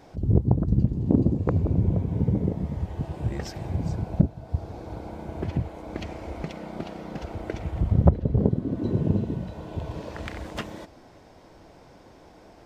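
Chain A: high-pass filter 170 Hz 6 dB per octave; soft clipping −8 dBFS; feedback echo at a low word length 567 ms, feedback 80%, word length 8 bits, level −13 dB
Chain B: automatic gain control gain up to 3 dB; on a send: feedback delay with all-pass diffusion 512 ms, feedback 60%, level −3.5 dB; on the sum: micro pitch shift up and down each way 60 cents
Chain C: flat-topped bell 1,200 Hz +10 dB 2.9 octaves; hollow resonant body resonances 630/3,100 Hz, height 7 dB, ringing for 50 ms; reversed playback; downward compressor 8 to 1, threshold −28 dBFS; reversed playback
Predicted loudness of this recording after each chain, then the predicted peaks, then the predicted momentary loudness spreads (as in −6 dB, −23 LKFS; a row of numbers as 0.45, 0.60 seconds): −31.0, −26.5, −34.0 LKFS; −9.5, −6.0, −13.0 dBFS; 17, 14, 10 LU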